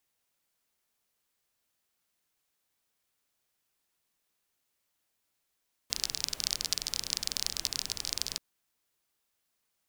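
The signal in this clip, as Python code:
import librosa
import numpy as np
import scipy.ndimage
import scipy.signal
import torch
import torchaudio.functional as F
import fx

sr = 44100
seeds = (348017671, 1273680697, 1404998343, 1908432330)

y = fx.rain(sr, seeds[0], length_s=2.48, drops_per_s=28.0, hz=4900.0, bed_db=-13.0)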